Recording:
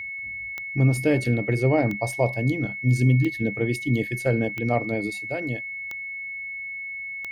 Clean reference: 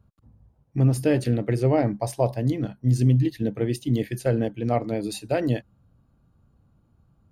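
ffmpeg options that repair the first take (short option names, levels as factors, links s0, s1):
-af "adeclick=t=4,bandreject=f=2200:w=30,asetnsamples=n=441:p=0,asendcmd='5.1 volume volume 6.5dB',volume=1"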